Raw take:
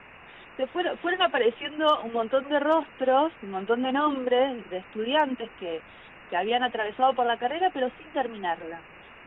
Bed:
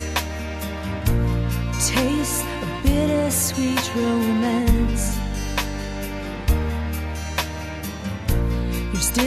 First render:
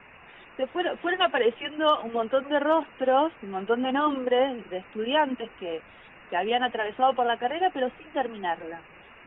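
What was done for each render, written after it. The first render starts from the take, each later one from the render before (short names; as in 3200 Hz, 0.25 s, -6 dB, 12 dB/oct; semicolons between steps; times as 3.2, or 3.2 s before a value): denoiser 6 dB, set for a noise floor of -49 dBFS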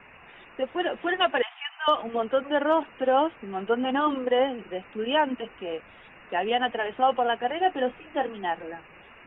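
1.42–1.88 brick-wall FIR high-pass 660 Hz; 7.63–8.35 doubler 24 ms -10.5 dB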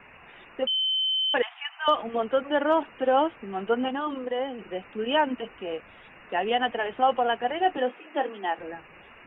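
0.67–1.34 bleep 3070 Hz -22.5 dBFS; 3.88–4.68 compressor 1.5:1, threshold -36 dBFS; 7.77–8.59 HPF 240 Hz 24 dB/oct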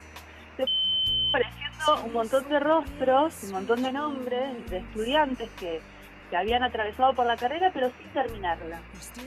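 add bed -22 dB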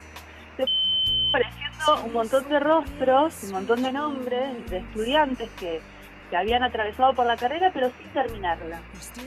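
gain +2.5 dB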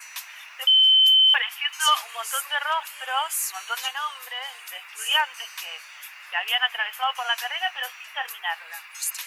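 HPF 910 Hz 24 dB/oct; tilt +4.5 dB/oct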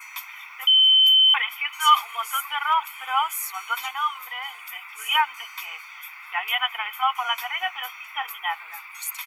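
band shelf 6400 Hz -9 dB; comb 0.9 ms, depth 96%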